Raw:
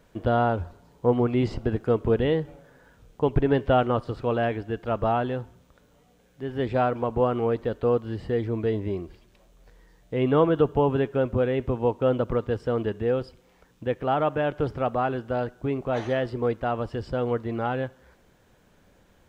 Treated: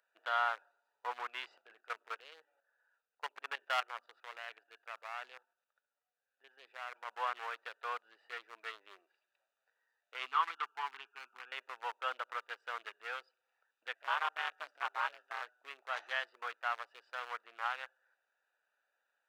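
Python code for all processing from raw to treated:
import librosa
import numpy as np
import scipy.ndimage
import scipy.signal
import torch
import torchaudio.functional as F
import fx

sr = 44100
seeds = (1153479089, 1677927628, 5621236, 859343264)

y = fx.chain(x, sr, fx.hum_notches(base_hz=60, count=6),
    fx.level_steps(step_db=10),
    fx.clip_hard(threshold_db=-16.5), at=(1.61, 7.08))
y = fx.chain(y, sr, fx.dynamic_eq(hz=1300.0, q=3.5, threshold_db=-44.0, ratio=4.0, max_db=5),
    fx.fixed_phaser(hz=2800.0, stages=8), at=(10.27, 11.52))
y = fx.chain(y, sr, fx.high_shelf(hz=3700.0, db=9.0),
    fx.ring_mod(carrier_hz=170.0), at=(13.95, 15.42))
y = fx.wiener(y, sr, points=41)
y = scipy.signal.sosfilt(scipy.signal.butter(4, 1100.0, 'highpass', fs=sr, output='sos'), y)
y = y * 10.0 ** (1.0 / 20.0)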